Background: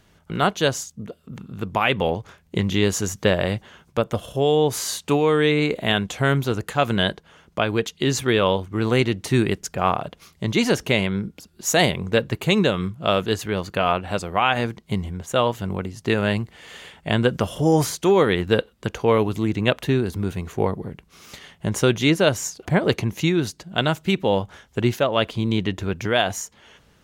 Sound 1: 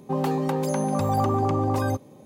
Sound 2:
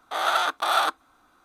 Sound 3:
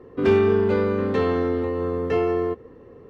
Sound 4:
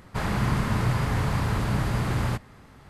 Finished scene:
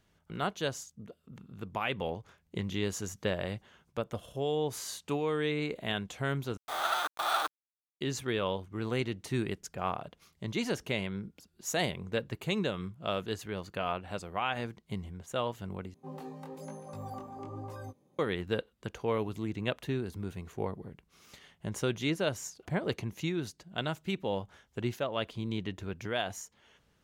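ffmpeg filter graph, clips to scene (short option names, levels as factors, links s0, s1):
-filter_complex "[0:a]volume=0.224[s0];[2:a]acrusher=bits=5:mix=0:aa=0.000001[s1];[1:a]flanger=delay=17:depth=7.3:speed=1.1[s2];[s0]asplit=3[s3][s4][s5];[s3]atrim=end=6.574[s6];[s1]atrim=end=1.44,asetpts=PTS-STARTPTS,volume=0.398[s7];[s4]atrim=start=8.006:end=15.944[s8];[s2]atrim=end=2.25,asetpts=PTS-STARTPTS,volume=0.158[s9];[s5]atrim=start=18.186[s10];[s6][s7]acrossfade=d=0.004:c1=hsin:c2=hsin[s11];[s11][s8]acrossfade=d=0.004:c1=hsin:c2=hsin[s12];[s12][s9]acrossfade=d=0.004:c1=hsin:c2=hsin[s13];[s13][s10]acrossfade=d=0.004:c1=hsin:c2=hsin"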